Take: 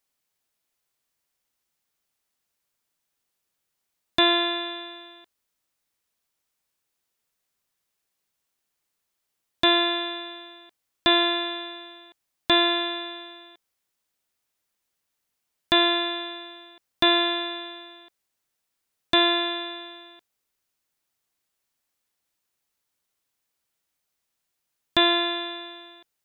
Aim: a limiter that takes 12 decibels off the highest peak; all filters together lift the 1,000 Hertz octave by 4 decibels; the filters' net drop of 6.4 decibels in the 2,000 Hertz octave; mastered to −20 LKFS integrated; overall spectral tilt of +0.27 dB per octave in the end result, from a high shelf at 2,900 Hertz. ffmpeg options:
ffmpeg -i in.wav -af "equalizer=frequency=1000:width_type=o:gain=7.5,equalizer=frequency=2000:width_type=o:gain=-7.5,highshelf=frequency=2900:gain=-7,volume=11.5dB,alimiter=limit=-9dB:level=0:latency=1" out.wav

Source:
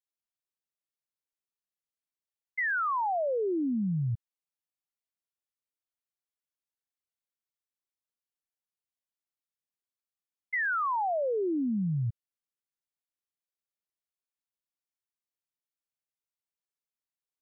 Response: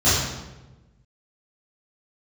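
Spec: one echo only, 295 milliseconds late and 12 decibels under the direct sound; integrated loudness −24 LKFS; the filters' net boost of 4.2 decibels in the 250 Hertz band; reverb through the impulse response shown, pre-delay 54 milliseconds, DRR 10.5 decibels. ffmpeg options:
-filter_complex "[0:a]equalizer=frequency=250:width_type=o:gain=5.5,aecho=1:1:295:0.251,asplit=2[link_01][link_02];[1:a]atrim=start_sample=2205,adelay=54[link_03];[link_02][link_03]afir=irnorm=-1:irlink=0,volume=-30.5dB[link_04];[link_01][link_04]amix=inputs=2:normalize=0,volume=3.5dB"

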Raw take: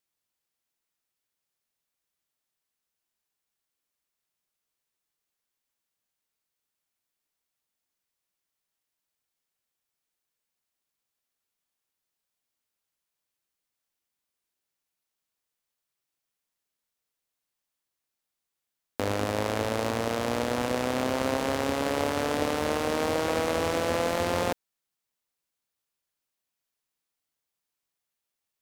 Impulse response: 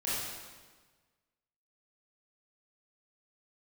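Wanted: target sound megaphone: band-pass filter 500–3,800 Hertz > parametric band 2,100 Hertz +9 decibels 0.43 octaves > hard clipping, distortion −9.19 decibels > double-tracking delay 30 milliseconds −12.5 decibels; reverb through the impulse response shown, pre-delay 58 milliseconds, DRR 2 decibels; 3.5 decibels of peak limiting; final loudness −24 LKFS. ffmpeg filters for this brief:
-filter_complex "[0:a]alimiter=limit=-15dB:level=0:latency=1,asplit=2[link_01][link_02];[1:a]atrim=start_sample=2205,adelay=58[link_03];[link_02][link_03]afir=irnorm=-1:irlink=0,volume=-8.5dB[link_04];[link_01][link_04]amix=inputs=2:normalize=0,highpass=500,lowpass=3800,equalizer=frequency=2100:width_type=o:width=0.43:gain=9,asoftclip=type=hard:threshold=-26.5dB,asplit=2[link_05][link_06];[link_06]adelay=30,volume=-12.5dB[link_07];[link_05][link_07]amix=inputs=2:normalize=0,volume=6.5dB"

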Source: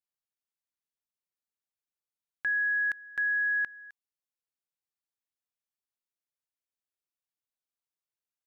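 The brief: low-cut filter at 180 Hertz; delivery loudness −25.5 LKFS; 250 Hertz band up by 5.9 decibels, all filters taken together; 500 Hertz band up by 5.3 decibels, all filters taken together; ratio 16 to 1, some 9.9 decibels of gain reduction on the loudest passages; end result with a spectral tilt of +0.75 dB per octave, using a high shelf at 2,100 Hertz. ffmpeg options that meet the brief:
ffmpeg -i in.wav -af "highpass=180,equalizer=frequency=250:width_type=o:gain=7.5,equalizer=frequency=500:width_type=o:gain=5.5,highshelf=frequency=2100:gain=-9,acompressor=threshold=-39dB:ratio=16,volume=15.5dB" out.wav

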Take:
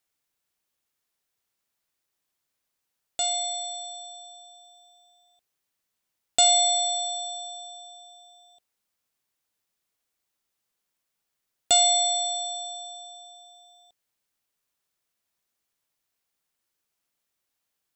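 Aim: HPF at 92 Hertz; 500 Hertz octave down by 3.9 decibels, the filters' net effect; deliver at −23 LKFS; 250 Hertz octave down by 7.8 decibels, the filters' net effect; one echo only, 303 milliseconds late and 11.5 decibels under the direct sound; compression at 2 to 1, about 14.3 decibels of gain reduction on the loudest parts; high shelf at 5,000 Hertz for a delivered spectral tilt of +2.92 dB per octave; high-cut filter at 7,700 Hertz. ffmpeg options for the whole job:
ffmpeg -i in.wav -af "highpass=92,lowpass=7700,equalizer=frequency=250:width_type=o:gain=-8.5,equalizer=frequency=500:width_type=o:gain=-6.5,highshelf=frequency=5000:gain=4,acompressor=threshold=-42dB:ratio=2,aecho=1:1:303:0.266,volume=13.5dB" out.wav

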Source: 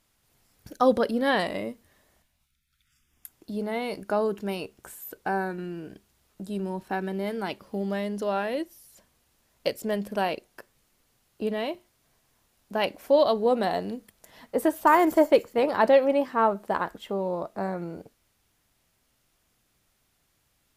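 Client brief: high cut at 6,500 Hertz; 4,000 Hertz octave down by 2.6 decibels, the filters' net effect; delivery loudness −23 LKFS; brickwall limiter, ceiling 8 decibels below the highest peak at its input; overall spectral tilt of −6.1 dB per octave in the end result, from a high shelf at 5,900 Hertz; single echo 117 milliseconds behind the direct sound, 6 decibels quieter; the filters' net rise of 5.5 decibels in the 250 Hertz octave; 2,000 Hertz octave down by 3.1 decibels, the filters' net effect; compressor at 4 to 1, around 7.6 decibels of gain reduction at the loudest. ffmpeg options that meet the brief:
ffmpeg -i in.wav -af "lowpass=6500,equalizer=frequency=250:width_type=o:gain=7,equalizer=frequency=2000:width_type=o:gain=-4,equalizer=frequency=4000:width_type=o:gain=-3.5,highshelf=frequency=5900:gain=6.5,acompressor=threshold=-21dB:ratio=4,alimiter=limit=-20dB:level=0:latency=1,aecho=1:1:117:0.501,volume=6.5dB" out.wav

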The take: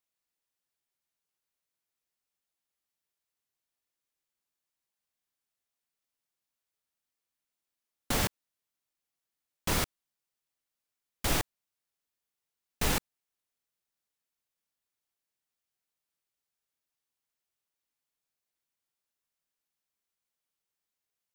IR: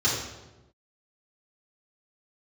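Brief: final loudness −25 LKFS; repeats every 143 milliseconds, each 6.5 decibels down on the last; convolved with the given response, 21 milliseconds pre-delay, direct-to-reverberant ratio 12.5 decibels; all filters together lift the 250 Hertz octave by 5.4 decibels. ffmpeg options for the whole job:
-filter_complex "[0:a]equalizer=frequency=250:width_type=o:gain=7,aecho=1:1:143|286|429|572|715|858:0.473|0.222|0.105|0.0491|0.0231|0.0109,asplit=2[link_01][link_02];[1:a]atrim=start_sample=2205,adelay=21[link_03];[link_02][link_03]afir=irnorm=-1:irlink=0,volume=-25.5dB[link_04];[link_01][link_04]amix=inputs=2:normalize=0,volume=6.5dB"

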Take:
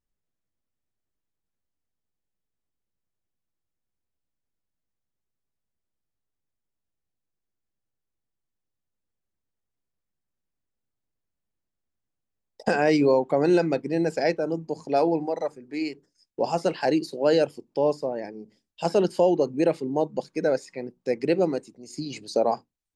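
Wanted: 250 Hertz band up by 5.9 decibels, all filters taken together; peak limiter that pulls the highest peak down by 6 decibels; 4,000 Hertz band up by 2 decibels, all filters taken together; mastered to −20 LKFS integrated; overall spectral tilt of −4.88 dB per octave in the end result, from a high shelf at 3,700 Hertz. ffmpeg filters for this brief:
ffmpeg -i in.wav -af "equalizer=frequency=250:width_type=o:gain=8.5,highshelf=frequency=3700:gain=-8,equalizer=frequency=4000:width_type=o:gain=8,volume=4dB,alimiter=limit=-7.5dB:level=0:latency=1" out.wav

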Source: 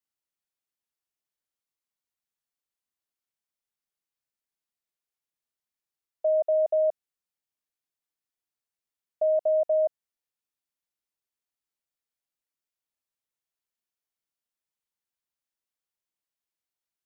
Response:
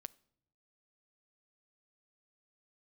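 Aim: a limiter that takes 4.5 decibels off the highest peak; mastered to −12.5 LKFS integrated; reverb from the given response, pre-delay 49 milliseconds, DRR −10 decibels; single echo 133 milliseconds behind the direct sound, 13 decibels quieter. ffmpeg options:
-filter_complex "[0:a]alimiter=limit=-23.5dB:level=0:latency=1,aecho=1:1:133:0.224,asplit=2[link_01][link_02];[1:a]atrim=start_sample=2205,adelay=49[link_03];[link_02][link_03]afir=irnorm=-1:irlink=0,volume=15.5dB[link_04];[link_01][link_04]amix=inputs=2:normalize=0,volume=8dB"

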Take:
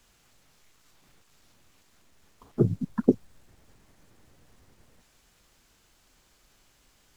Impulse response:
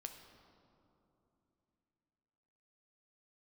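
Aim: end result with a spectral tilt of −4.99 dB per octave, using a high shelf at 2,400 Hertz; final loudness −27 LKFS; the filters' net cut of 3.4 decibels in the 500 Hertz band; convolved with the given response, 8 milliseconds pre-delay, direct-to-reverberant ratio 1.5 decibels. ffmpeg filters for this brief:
-filter_complex "[0:a]equalizer=frequency=500:width_type=o:gain=-5,highshelf=frequency=2400:gain=5,asplit=2[link_01][link_02];[1:a]atrim=start_sample=2205,adelay=8[link_03];[link_02][link_03]afir=irnorm=-1:irlink=0,volume=2.5dB[link_04];[link_01][link_04]amix=inputs=2:normalize=0,volume=0.5dB"

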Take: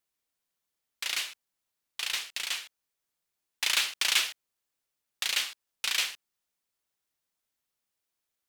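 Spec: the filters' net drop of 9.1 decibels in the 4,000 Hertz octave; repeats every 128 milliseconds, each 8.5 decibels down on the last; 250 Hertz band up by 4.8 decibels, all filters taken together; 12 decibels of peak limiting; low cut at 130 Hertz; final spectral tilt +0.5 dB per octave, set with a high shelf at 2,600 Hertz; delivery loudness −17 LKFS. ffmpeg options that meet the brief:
ffmpeg -i in.wav -af "highpass=130,equalizer=frequency=250:width_type=o:gain=7,highshelf=frequency=2600:gain=-5,equalizer=frequency=4000:width_type=o:gain=-8,alimiter=level_in=6dB:limit=-24dB:level=0:latency=1,volume=-6dB,aecho=1:1:128|256|384|512:0.376|0.143|0.0543|0.0206,volume=25dB" out.wav

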